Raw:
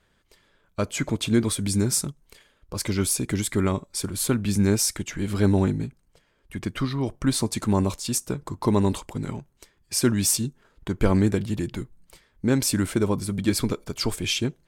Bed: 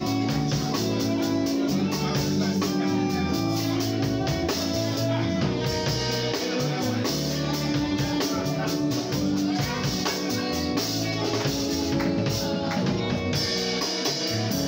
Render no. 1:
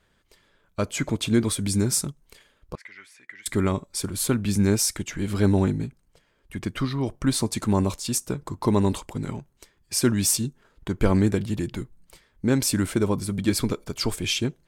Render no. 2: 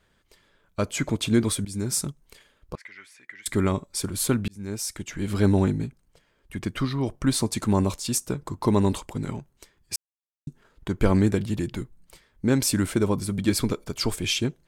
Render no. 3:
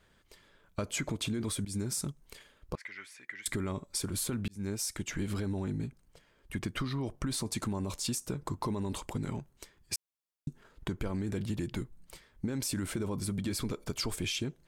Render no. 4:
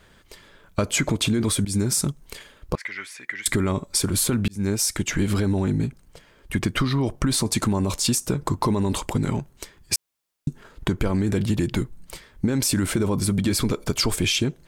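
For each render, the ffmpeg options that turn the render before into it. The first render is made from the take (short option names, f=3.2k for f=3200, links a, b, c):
-filter_complex "[0:a]asettb=1/sr,asplit=3[a][b][c];[a]atrim=end=2.754[d];[b]atrim=start=2.75:end=3.46,asetpts=PTS-STARTPTS,afade=t=in:d=0.004:c=qsin,afade=t=out:st=0.706:d=0.004:c=qsin,bandpass=f=1.9k:t=q:w=7[e];[c]atrim=start=3.456[f];[d][e]acrossfade=d=0.004:c1=hsin:c2=qsin[g];[g][f]acrossfade=d=0.004:c1=qsin:c2=hsin"
-filter_complex "[0:a]asplit=5[a][b][c][d][e];[a]atrim=end=1.65,asetpts=PTS-STARTPTS,afade=t=out:st=1.646:d=0.004:c=hsin:silence=0.158489[f];[b]atrim=start=1.65:end=4.48,asetpts=PTS-STARTPTS,afade=t=in:d=0.42:silence=0.158489,afade=t=out:st=2.826:d=0.004:c=hsin[g];[c]atrim=start=4.48:end=9.96,asetpts=PTS-STARTPTS,afade=t=in:d=0.86,afade=t=out:st=5.476:d=0.004:c=hsin[h];[d]atrim=start=9.96:end=10.47,asetpts=PTS-STARTPTS,volume=0[i];[e]atrim=start=10.47,asetpts=PTS-STARTPTS,afade=t=in:d=0.004:c=hsin[j];[f][g][h][i][j]concat=n=5:v=0:a=1"
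-af "alimiter=limit=-18.5dB:level=0:latency=1:release=23,acompressor=threshold=-31dB:ratio=6"
-af "volume=12dB"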